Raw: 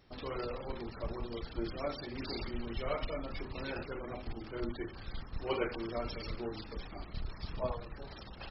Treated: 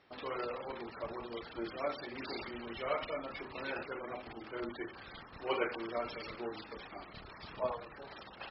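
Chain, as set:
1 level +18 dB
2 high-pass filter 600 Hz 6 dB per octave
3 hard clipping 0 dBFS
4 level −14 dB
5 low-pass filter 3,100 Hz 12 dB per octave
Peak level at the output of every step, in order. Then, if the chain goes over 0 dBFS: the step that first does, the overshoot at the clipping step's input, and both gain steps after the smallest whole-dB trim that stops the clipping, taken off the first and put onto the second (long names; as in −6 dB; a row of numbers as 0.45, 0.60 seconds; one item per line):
−2.5, −5.5, −5.5, −19.5, −20.0 dBFS
no step passes full scale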